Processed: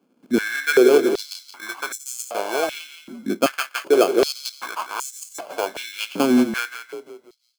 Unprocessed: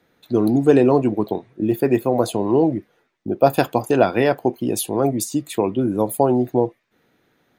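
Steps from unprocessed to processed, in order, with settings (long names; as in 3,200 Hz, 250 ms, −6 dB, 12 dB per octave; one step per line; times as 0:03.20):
sample-rate reduction 1,900 Hz, jitter 0%
echo with shifted repeats 173 ms, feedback 43%, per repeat −30 Hz, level −9.5 dB
high-pass on a step sequencer 2.6 Hz 240–7,200 Hz
level −6.5 dB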